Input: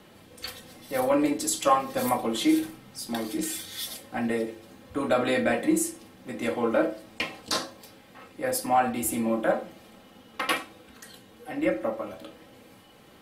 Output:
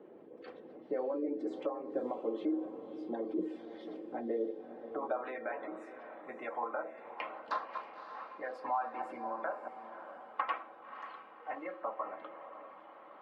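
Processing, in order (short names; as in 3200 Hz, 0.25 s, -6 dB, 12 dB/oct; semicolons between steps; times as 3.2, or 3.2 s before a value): 7.44–9.68 regenerating reverse delay 0.113 s, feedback 54%, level -13 dB; Bessel high-pass 200 Hz, order 2; spectral gate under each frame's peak -25 dB strong; LPF 2700 Hz 12 dB/oct; harmonic-percussive split percussive +7 dB; compressor 6:1, threshold -29 dBFS, peak gain reduction 14.5 dB; band-pass sweep 400 Hz -> 1000 Hz, 4.49–5.28; diffused feedback echo 0.577 s, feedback 48%, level -11 dB; gain +2 dB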